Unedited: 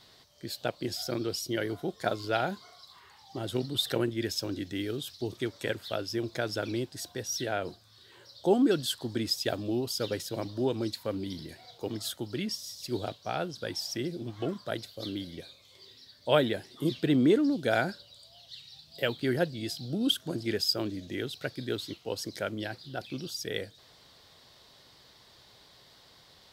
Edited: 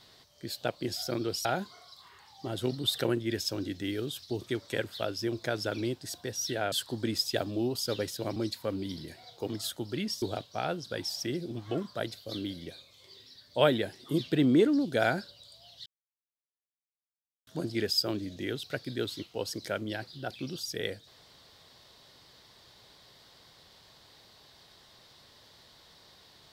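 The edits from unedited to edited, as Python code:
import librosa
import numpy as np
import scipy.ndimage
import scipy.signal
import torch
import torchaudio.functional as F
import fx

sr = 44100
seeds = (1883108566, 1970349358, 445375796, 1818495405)

y = fx.edit(x, sr, fx.cut(start_s=1.45, length_s=0.91),
    fx.cut(start_s=7.63, length_s=1.21),
    fx.cut(start_s=10.48, length_s=0.29),
    fx.cut(start_s=12.63, length_s=0.3),
    fx.silence(start_s=18.57, length_s=1.61), tone=tone)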